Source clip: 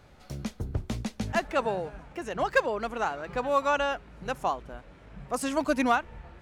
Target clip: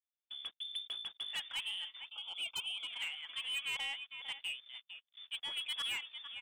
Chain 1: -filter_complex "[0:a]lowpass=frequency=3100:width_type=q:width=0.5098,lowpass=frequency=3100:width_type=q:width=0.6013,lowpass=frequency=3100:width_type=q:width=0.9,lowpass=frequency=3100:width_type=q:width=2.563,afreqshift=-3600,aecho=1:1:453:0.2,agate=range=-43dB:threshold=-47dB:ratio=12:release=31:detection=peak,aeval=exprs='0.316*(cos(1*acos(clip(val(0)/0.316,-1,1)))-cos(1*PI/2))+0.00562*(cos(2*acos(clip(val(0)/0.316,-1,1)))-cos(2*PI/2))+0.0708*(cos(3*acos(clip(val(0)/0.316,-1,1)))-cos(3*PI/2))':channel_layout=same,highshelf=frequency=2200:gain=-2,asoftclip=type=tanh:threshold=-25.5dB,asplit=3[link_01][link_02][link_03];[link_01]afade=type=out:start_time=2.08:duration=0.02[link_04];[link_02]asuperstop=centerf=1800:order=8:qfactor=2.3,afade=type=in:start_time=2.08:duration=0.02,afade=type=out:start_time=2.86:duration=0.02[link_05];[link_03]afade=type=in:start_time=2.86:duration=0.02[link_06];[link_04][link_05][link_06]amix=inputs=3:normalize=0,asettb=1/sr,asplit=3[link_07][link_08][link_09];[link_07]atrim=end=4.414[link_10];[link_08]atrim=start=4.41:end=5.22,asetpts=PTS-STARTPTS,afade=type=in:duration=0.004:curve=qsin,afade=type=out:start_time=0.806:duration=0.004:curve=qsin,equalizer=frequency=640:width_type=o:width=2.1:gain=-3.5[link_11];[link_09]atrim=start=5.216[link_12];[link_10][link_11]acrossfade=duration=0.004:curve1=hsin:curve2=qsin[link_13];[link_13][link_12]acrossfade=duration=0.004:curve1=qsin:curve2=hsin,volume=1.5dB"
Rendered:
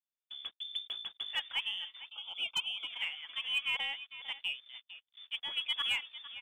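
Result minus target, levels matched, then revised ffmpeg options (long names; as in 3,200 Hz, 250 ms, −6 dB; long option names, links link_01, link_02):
soft clipping: distortion −6 dB
-filter_complex "[0:a]lowpass=frequency=3100:width_type=q:width=0.5098,lowpass=frequency=3100:width_type=q:width=0.6013,lowpass=frequency=3100:width_type=q:width=0.9,lowpass=frequency=3100:width_type=q:width=2.563,afreqshift=-3600,aecho=1:1:453:0.2,agate=range=-43dB:threshold=-47dB:ratio=12:release=31:detection=peak,aeval=exprs='0.316*(cos(1*acos(clip(val(0)/0.316,-1,1)))-cos(1*PI/2))+0.00562*(cos(2*acos(clip(val(0)/0.316,-1,1)))-cos(2*PI/2))+0.0708*(cos(3*acos(clip(val(0)/0.316,-1,1)))-cos(3*PI/2))':channel_layout=same,highshelf=frequency=2200:gain=-2,asoftclip=type=tanh:threshold=-35.5dB,asplit=3[link_01][link_02][link_03];[link_01]afade=type=out:start_time=2.08:duration=0.02[link_04];[link_02]asuperstop=centerf=1800:order=8:qfactor=2.3,afade=type=in:start_time=2.08:duration=0.02,afade=type=out:start_time=2.86:duration=0.02[link_05];[link_03]afade=type=in:start_time=2.86:duration=0.02[link_06];[link_04][link_05][link_06]amix=inputs=3:normalize=0,asettb=1/sr,asplit=3[link_07][link_08][link_09];[link_07]atrim=end=4.414[link_10];[link_08]atrim=start=4.41:end=5.22,asetpts=PTS-STARTPTS,afade=type=in:duration=0.004:curve=qsin,afade=type=out:start_time=0.806:duration=0.004:curve=qsin,equalizer=frequency=640:width_type=o:width=2.1:gain=-3.5[link_11];[link_09]atrim=start=5.216[link_12];[link_10][link_11]acrossfade=duration=0.004:curve1=hsin:curve2=qsin[link_13];[link_13][link_12]acrossfade=duration=0.004:curve1=qsin:curve2=hsin,volume=1.5dB"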